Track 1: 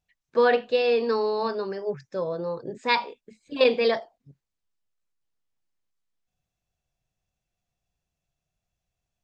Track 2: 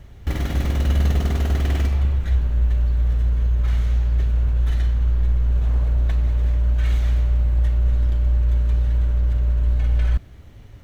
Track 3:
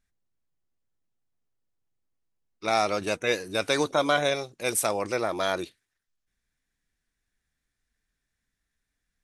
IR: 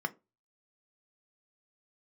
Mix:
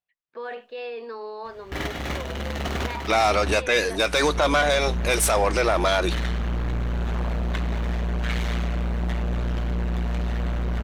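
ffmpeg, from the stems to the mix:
-filter_complex "[0:a]lowpass=3.7k,alimiter=limit=-18.5dB:level=0:latency=1:release=12,volume=-19.5dB,asplit=2[a][b];[1:a]asoftclip=type=hard:threshold=-18dB,adelay=1450,volume=-2dB[c];[2:a]adelay=450,volume=1.5dB[d];[b]apad=whole_len=541598[e];[c][e]sidechaincompress=threshold=-53dB:ratio=10:attack=28:release=574[f];[a][f][d]amix=inputs=3:normalize=0,asplit=2[g][h];[h]highpass=f=720:p=1,volume=20dB,asoftclip=type=tanh:threshold=-5.5dB[i];[g][i]amix=inputs=2:normalize=0,lowpass=f=4.1k:p=1,volume=-6dB,alimiter=limit=-12dB:level=0:latency=1:release=116"

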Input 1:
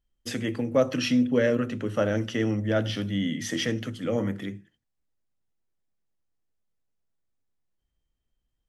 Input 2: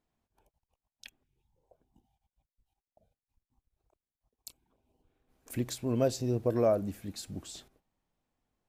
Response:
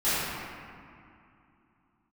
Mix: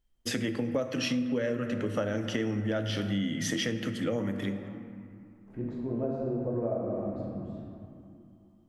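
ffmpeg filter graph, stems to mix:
-filter_complex "[0:a]volume=2dB,asplit=2[a][b];[b]volume=-23.5dB[c];[1:a]lowpass=1k,dynaudnorm=f=120:g=3:m=12dB,volume=-18.5dB,asplit=2[d][e];[e]volume=-7.5dB[f];[2:a]atrim=start_sample=2205[g];[c][f]amix=inputs=2:normalize=0[h];[h][g]afir=irnorm=-1:irlink=0[i];[a][d][i]amix=inputs=3:normalize=0,acompressor=threshold=-27dB:ratio=6"

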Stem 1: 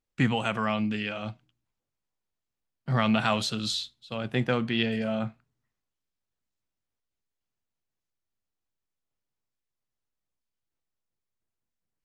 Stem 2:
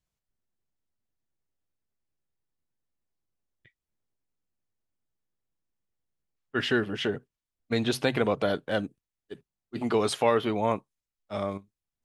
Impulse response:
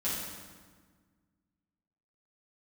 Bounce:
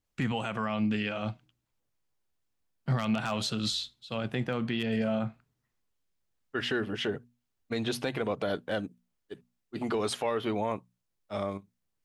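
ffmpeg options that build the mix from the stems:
-filter_complex "[0:a]aeval=exprs='0.237*(abs(mod(val(0)/0.237+3,4)-2)-1)':c=same,adynamicequalizer=threshold=0.0112:dfrequency=1600:dqfactor=0.7:tfrequency=1600:tqfactor=0.7:attack=5:release=100:ratio=0.375:range=2:mode=cutabove:tftype=highshelf,volume=2dB[a];[1:a]bandreject=f=60:t=h:w=6,bandreject=f=120:t=h:w=6,bandreject=f=180:t=h:w=6,bandreject=f=240:t=h:w=6,acontrast=85,volume=-8.5dB[b];[a][b]amix=inputs=2:normalize=0,alimiter=limit=-20dB:level=0:latency=1:release=142"

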